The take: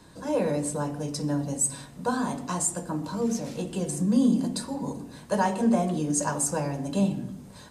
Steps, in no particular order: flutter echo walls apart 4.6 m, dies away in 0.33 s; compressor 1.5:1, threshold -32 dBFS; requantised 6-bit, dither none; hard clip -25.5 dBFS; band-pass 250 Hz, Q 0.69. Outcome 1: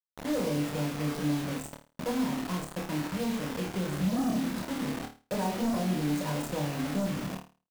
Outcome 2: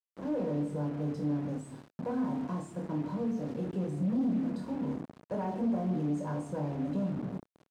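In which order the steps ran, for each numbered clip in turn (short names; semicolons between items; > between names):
band-pass > hard clip > requantised > compressor > flutter echo; compressor > flutter echo > requantised > hard clip > band-pass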